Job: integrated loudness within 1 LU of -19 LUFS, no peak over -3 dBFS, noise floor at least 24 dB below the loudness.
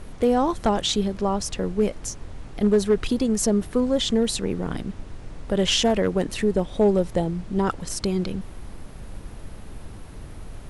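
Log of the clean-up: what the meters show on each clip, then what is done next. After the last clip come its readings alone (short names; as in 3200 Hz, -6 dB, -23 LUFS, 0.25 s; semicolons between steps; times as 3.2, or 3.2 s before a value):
clipped 0.2%; flat tops at -11.5 dBFS; noise floor -40 dBFS; noise floor target -48 dBFS; loudness -23.5 LUFS; peak -11.5 dBFS; loudness target -19.0 LUFS
-> clip repair -11.5 dBFS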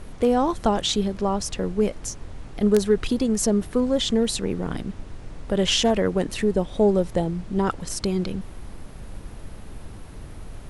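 clipped 0.0%; noise floor -40 dBFS; noise floor target -48 dBFS
-> noise print and reduce 8 dB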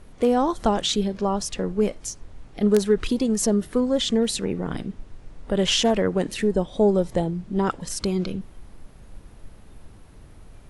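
noise floor -47 dBFS; noise floor target -48 dBFS
-> noise print and reduce 6 dB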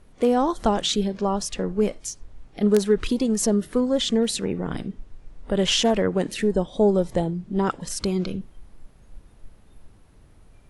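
noise floor -52 dBFS; loudness -23.5 LUFS; peak -3.0 dBFS; loudness target -19.0 LUFS
-> gain +4.5 dB; limiter -3 dBFS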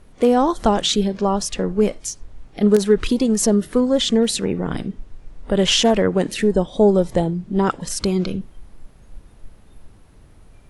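loudness -19.0 LUFS; peak -3.0 dBFS; noise floor -48 dBFS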